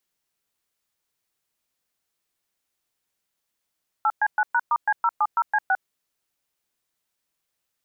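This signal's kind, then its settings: DTMF "8C9#*C070C6", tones 51 ms, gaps 0.114 s, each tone -20 dBFS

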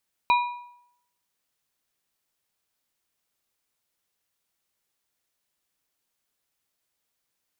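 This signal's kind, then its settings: metal hit plate, lowest mode 972 Hz, modes 3, decay 0.73 s, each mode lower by 7 dB, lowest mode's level -15 dB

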